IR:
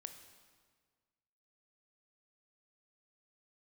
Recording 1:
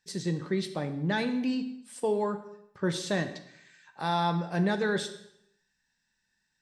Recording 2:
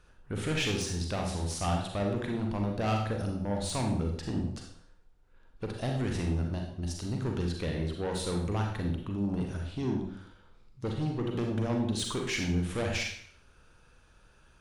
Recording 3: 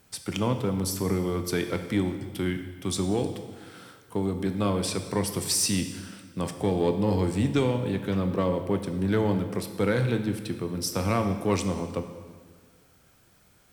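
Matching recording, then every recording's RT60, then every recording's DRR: 3; 0.75, 0.55, 1.7 seconds; 7.0, 1.0, 7.0 decibels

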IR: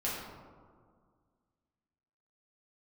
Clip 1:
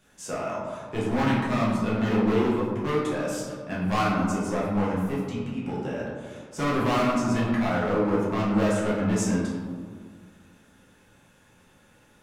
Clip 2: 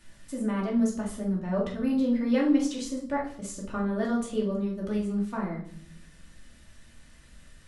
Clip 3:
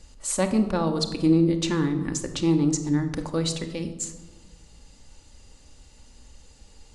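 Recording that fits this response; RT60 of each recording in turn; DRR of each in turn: 1; 1.9, 0.55, 1.3 seconds; −7.5, −3.5, 5.5 decibels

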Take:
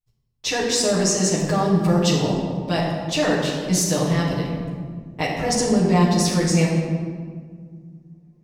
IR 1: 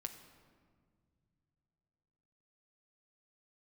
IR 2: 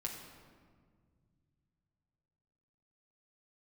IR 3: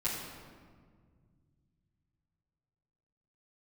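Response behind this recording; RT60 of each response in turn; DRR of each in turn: 3; non-exponential decay, 1.9 s, 1.8 s; 5.5, −1.5, −11.0 decibels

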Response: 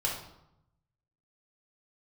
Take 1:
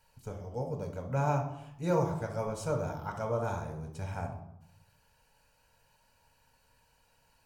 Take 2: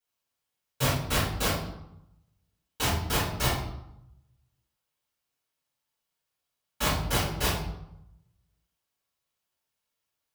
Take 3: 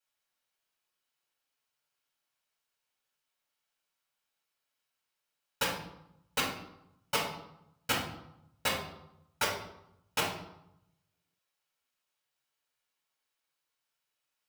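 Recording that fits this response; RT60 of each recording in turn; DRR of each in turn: 3; 0.80, 0.80, 0.80 seconds; 2.5, −10.5, −3.5 decibels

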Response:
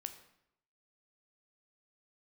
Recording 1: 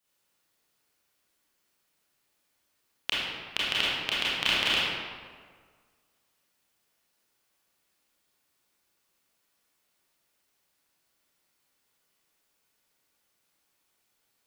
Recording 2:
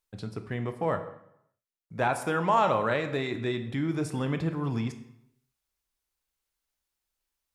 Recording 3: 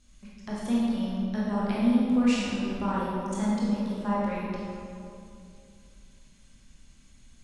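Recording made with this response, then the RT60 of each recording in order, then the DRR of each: 2; 1.7, 0.80, 2.5 seconds; −8.5, 7.5, −7.5 decibels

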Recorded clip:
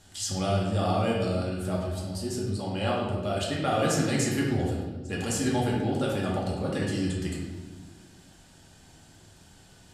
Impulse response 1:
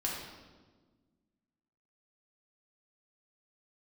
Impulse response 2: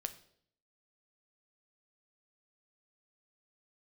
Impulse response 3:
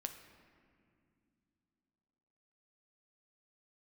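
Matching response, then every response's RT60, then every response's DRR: 1; 1.4 s, 0.65 s, non-exponential decay; −4.0, 8.5, 6.0 decibels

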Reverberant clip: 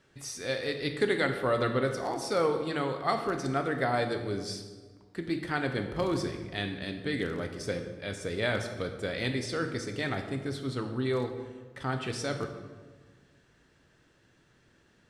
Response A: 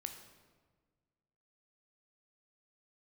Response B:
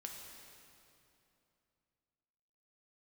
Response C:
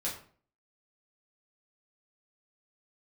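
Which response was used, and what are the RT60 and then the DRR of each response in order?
A; 1.5, 2.8, 0.45 seconds; 5.5, 0.5, −6.5 decibels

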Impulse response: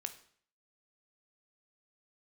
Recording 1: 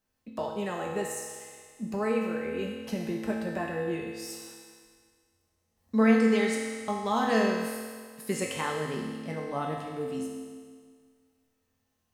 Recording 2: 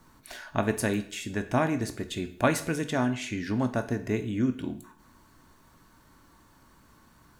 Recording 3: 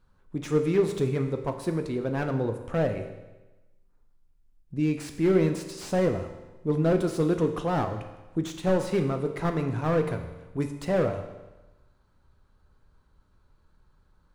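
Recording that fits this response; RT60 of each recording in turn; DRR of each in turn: 2; 1.8, 0.55, 1.1 seconds; −2.5, 8.0, 6.0 decibels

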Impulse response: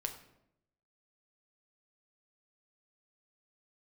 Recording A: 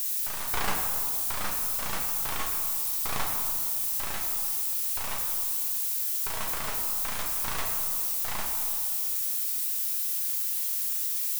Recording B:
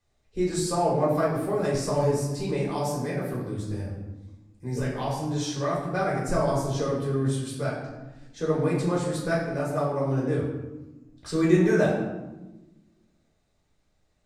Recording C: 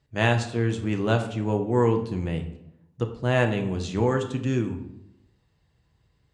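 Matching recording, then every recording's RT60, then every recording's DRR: C; 2.3, 1.1, 0.80 seconds; 0.0, −5.5, 4.5 decibels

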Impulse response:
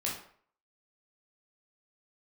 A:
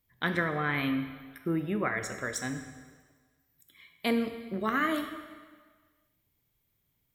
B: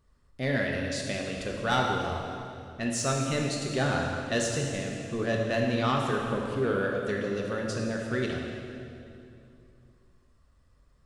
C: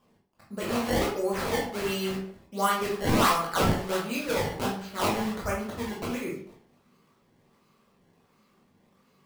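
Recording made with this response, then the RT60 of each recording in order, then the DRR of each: C; 1.6, 2.6, 0.55 seconds; 7.0, −1.0, −4.0 decibels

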